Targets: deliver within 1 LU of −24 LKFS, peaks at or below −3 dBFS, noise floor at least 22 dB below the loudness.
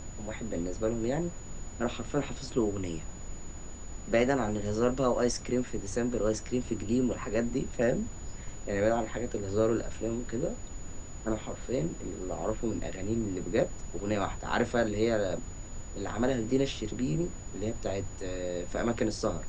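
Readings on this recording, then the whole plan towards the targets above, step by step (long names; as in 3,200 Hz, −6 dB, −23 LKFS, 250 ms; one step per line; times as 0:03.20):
interfering tone 6,900 Hz; level of the tone −49 dBFS; background noise floor −42 dBFS; target noise floor −54 dBFS; integrated loudness −32.0 LKFS; sample peak −13.0 dBFS; target loudness −24.0 LKFS
→ notch filter 6,900 Hz, Q 30
noise reduction from a noise print 12 dB
level +8 dB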